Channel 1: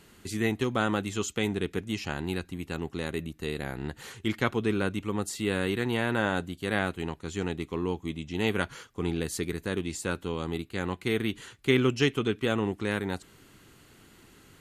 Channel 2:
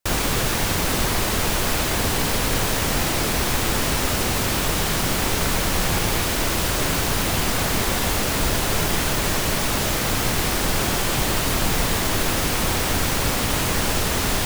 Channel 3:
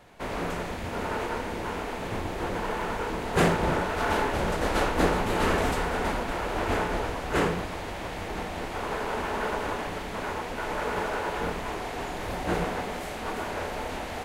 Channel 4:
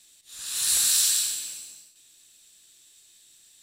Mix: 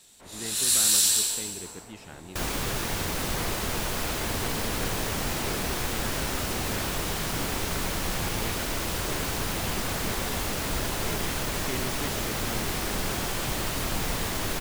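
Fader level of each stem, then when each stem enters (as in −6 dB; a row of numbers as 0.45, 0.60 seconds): −13.0, −8.0, −17.0, +0.5 decibels; 0.00, 2.30, 0.00, 0.00 seconds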